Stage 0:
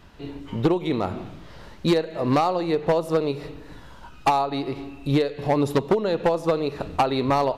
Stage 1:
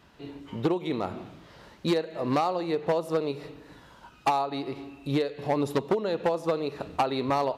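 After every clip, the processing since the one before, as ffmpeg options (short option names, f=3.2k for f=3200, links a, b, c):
-af "highpass=f=140:p=1,volume=-4.5dB"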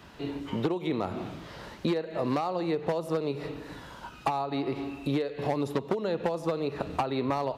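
-filter_complex "[0:a]acrossover=split=180|3300[a][b][c];[a]acompressor=threshold=-46dB:ratio=4[d];[b]acompressor=threshold=-35dB:ratio=4[e];[c]acompressor=threshold=-59dB:ratio=4[f];[d][e][f]amix=inputs=3:normalize=0,volume=7dB"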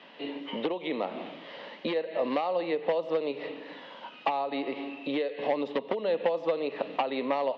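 -af "highpass=f=240:w=0.5412,highpass=f=240:w=1.3066,equalizer=f=360:t=q:w=4:g=-7,equalizer=f=540:t=q:w=4:g=6,equalizer=f=1.4k:t=q:w=4:g=-7,equalizer=f=2k:t=q:w=4:g=5,equalizer=f=3k:t=q:w=4:g=7,lowpass=f=4k:w=0.5412,lowpass=f=4k:w=1.3066"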